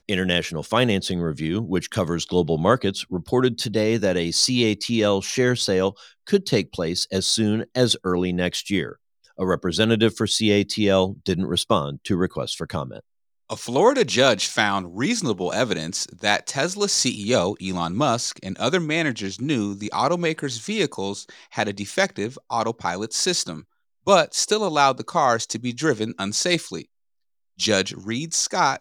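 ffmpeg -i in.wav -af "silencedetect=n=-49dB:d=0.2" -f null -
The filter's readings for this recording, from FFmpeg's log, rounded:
silence_start: 8.96
silence_end: 9.24 | silence_duration: 0.28
silence_start: 13.00
silence_end: 13.49 | silence_duration: 0.49
silence_start: 23.64
silence_end: 24.06 | silence_duration: 0.43
silence_start: 26.85
silence_end: 27.58 | silence_duration: 0.73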